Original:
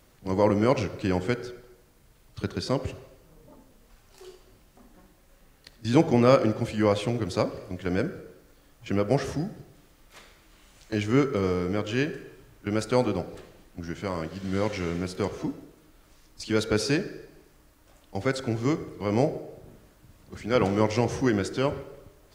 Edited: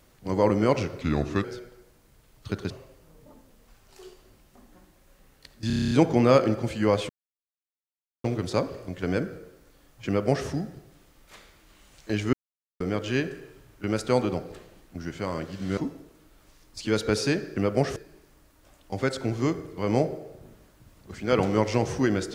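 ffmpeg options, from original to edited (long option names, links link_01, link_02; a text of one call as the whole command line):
ffmpeg -i in.wav -filter_complex "[0:a]asplit=18[link_01][link_02][link_03][link_04][link_05][link_06][link_07][link_08][link_09][link_10][link_11][link_12][link_13][link_14][link_15][link_16][link_17][link_18];[link_01]atrim=end=1.014[link_19];[link_02]atrim=start=1.01:end=1.36,asetpts=PTS-STARTPTS,asetrate=35721,aresample=44100[link_20];[link_03]atrim=start=1.356:end=2.622[link_21];[link_04]atrim=start=2.918:end=5.922[link_22];[link_05]atrim=start=5.888:end=5.922[link_23];[link_06]atrim=start=5.888:end=5.922[link_24];[link_07]atrim=start=5.888:end=5.922[link_25];[link_08]atrim=start=5.888:end=5.922[link_26];[link_09]atrim=start=5.888:end=5.922[link_27];[link_10]atrim=start=5.888:end=5.922[link_28];[link_11]atrim=start=5.888:end=5.922[link_29];[link_12]atrim=start=5.888:end=7.07,asetpts=PTS-STARTPTS,afade=type=out:start_time=1.178:duration=0.004:curve=hsin,apad=pad_dur=1.15[link_30];[link_13]atrim=start=7.07:end=11.16,asetpts=PTS-STARTPTS,afade=type=in:duration=0.004:curve=hsin,afade=type=out:start_time=4.086:duration=0.004:curve=hsin[link_31];[link_14]atrim=start=11.16:end=11.63,asetpts=PTS-STARTPTS,volume=0[link_32];[link_15]atrim=start=11.63:end=14.602,asetpts=PTS-STARTPTS,afade=type=in:duration=0.004:curve=hsin[link_33];[link_16]atrim=start=15.398:end=17.192[link_34];[link_17]atrim=start=8.898:end=9.302[link_35];[link_18]atrim=start=17.188[link_36];[link_19][link_20]acrossfade=duration=0.004:curve1=hsin:curve2=hsin[link_37];[link_37][link_21]acrossfade=duration=0.004:curve1=hsin:curve2=hsin[link_38];[link_38][link_22]acrossfade=duration=0.004:curve1=hsin:curve2=hsin[link_39];[link_39][link_23]acrossfade=duration=0.004:curve1=hsin:curve2=hsin[link_40];[link_40][link_24]acrossfade=duration=0.004:curve1=hsin:curve2=hsin[link_41];[link_41][link_25]acrossfade=duration=0.004:curve1=hsin:curve2=hsin[link_42];[link_42][link_26]acrossfade=duration=0.004:curve1=hsin:curve2=hsin[link_43];[link_43][link_27]acrossfade=duration=0.004:curve1=hsin:curve2=hsin[link_44];[link_44][link_28]acrossfade=duration=0.004:curve1=hsin:curve2=hsin[link_45];[link_45][link_29]acrossfade=duration=0.004:curve1=hsin:curve2=hsin[link_46];[link_30][link_31][link_32][link_33]concat=n=4:v=0:a=1[link_47];[link_46][link_47]acrossfade=duration=0.004:curve1=hsin:curve2=hsin[link_48];[link_48][link_34]acrossfade=duration=0.004:curve1=hsin:curve2=hsin[link_49];[link_49][link_35]acrossfade=duration=0.004:curve1=hsin:curve2=hsin[link_50];[link_50][link_36]acrossfade=duration=0.004:curve1=hsin:curve2=hsin" out.wav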